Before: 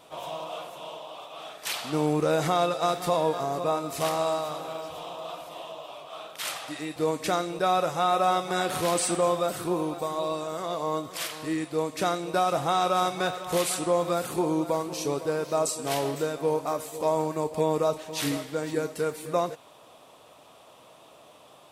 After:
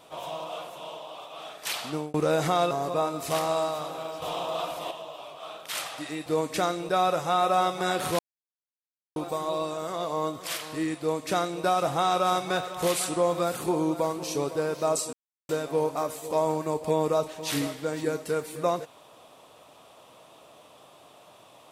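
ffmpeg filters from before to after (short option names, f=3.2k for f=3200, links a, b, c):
-filter_complex "[0:a]asplit=9[a][b][c][d][e][f][g][h][i];[a]atrim=end=2.14,asetpts=PTS-STARTPTS,afade=t=out:st=1.85:d=0.29[j];[b]atrim=start=2.14:end=2.712,asetpts=PTS-STARTPTS,afade=t=in:d=0.004:c=hsin[k];[c]atrim=start=3.408:end=4.922[l];[d]atrim=start=4.918:end=5.612,asetpts=PTS-STARTPTS,volume=6.5dB[m];[e]atrim=start=5.608:end=8.89,asetpts=PTS-STARTPTS,afade=t=out:st=3.278:d=0.004:c=hsin[n];[f]atrim=start=8.89:end=9.86,asetpts=PTS-STARTPTS,volume=0[o];[g]atrim=start=9.86:end=15.83,asetpts=PTS-STARTPTS,afade=t=in:d=0.004:c=hsin,afade=t=out:st=5.966:d=0.004:c=hsin[p];[h]atrim=start=15.83:end=16.19,asetpts=PTS-STARTPTS,volume=0[q];[i]atrim=start=16.19,asetpts=PTS-STARTPTS,afade=t=in:d=0.004:c=hsin[r];[j][k]concat=n=2:v=0:a=1[s];[s][l]acrossfade=d=0.004:c1=hsin:c2=hsin[t];[t][m]acrossfade=d=0.004:c1=hsin:c2=hsin[u];[n][o][p][q][r]concat=n=5:v=0:a=1[v];[u][v]acrossfade=d=0.004:c1=hsin:c2=hsin"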